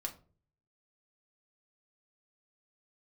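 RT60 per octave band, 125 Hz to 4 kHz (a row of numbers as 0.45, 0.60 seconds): 0.80, 0.60, 0.50, 0.35, 0.25, 0.25 seconds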